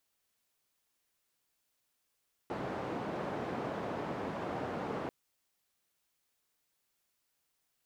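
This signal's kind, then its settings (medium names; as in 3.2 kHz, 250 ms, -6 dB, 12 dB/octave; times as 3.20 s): noise band 130–720 Hz, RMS -38 dBFS 2.59 s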